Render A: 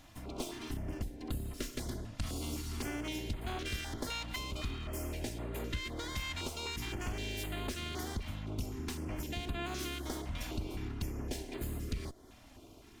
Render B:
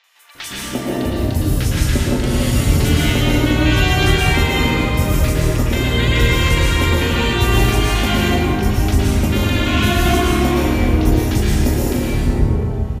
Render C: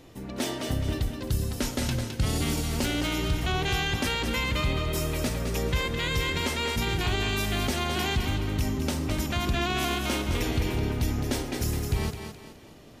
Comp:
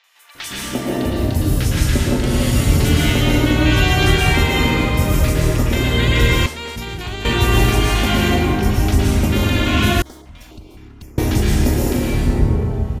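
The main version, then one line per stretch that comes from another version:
B
6.46–7.25 from C
10.02–11.18 from A

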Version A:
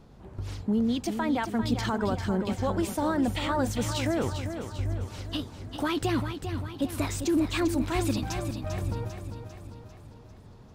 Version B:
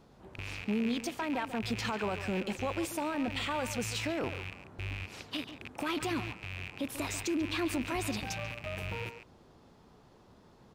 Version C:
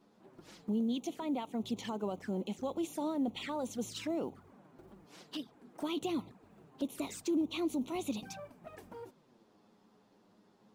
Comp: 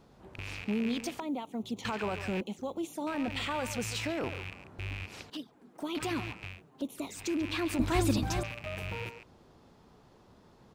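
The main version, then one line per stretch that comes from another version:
B
1.2–1.85 from C
2.41–3.07 from C
5.3–5.95 from C
6.54–7.22 from C, crossfade 0.16 s
7.79–8.43 from A

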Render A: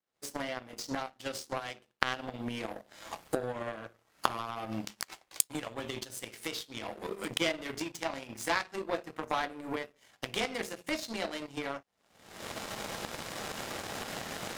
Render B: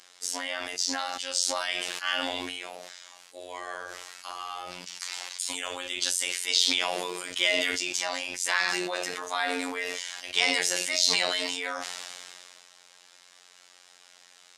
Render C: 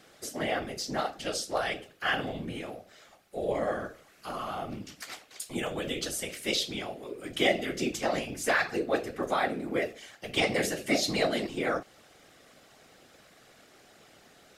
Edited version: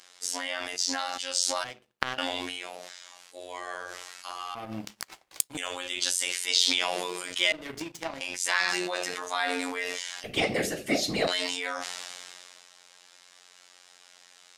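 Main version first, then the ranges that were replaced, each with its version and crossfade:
B
1.64–2.18 from A
4.55–5.57 from A
7.52–8.21 from A
10.24–11.27 from C

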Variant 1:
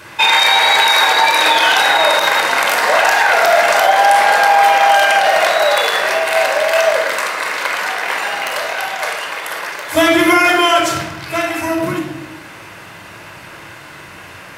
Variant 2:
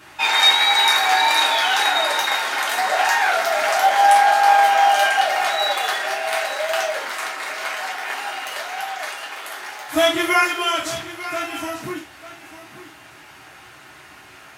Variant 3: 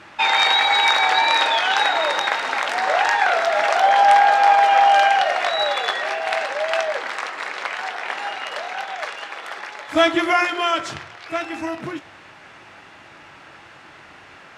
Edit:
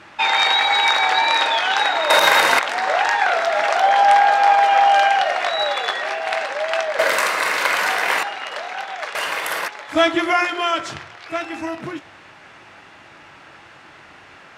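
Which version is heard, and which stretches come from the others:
3
2.1–2.59 from 1
6.99–8.23 from 1
9.15–9.68 from 1
not used: 2

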